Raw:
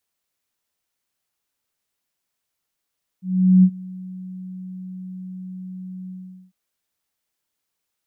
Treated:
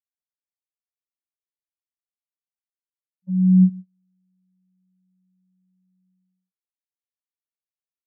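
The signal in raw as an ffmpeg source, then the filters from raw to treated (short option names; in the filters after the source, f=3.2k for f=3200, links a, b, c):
-f lavfi -i "aevalsrc='0.422*sin(2*PI*185*t)':d=3.3:s=44100,afade=t=in:d=0.414,afade=t=out:st=0.414:d=0.064:silence=0.0668,afade=t=out:st=2.87:d=0.43"
-af "aemphasis=mode=reproduction:type=50kf,agate=range=-34dB:threshold=-28dB:ratio=16:detection=peak"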